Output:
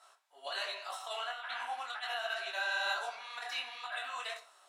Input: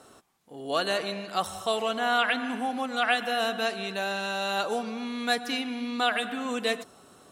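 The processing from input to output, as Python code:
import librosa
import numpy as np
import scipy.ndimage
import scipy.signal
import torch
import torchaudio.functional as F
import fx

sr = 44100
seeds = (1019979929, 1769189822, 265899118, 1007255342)

y = scipy.signal.sosfilt(scipy.signal.butter(4, 780.0, 'highpass', fs=sr, output='sos'), x)
y = fx.high_shelf(y, sr, hz=9100.0, db=-9.5)
y = y + 0.37 * np.pad(y, (int(3.1 * sr / 1000.0), 0))[:len(y)]
y = fx.echo_feedback(y, sr, ms=99, feedback_pct=33, wet_db=-20.0)
y = fx.over_compress(y, sr, threshold_db=-31.0, ratio=-0.5)
y = fx.room_shoebox(y, sr, seeds[0], volume_m3=41.0, walls='mixed', distance_m=0.35)
y = fx.stretch_vocoder(y, sr, factor=0.64)
y = fx.detune_double(y, sr, cents=46)
y = y * 10.0 ** (-2.5 / 20.0)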